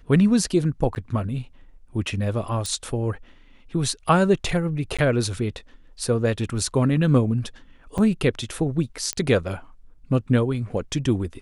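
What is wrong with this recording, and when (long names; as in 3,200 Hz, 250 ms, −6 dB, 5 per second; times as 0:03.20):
0:00.95–0:00.96: drop-out 9.7 ms
0:02.66: click
0:04.97–0:04.99: drop-out 16 ms
0:07.98: drop-out 4.5 ms
0:09.13: click −10 dBFS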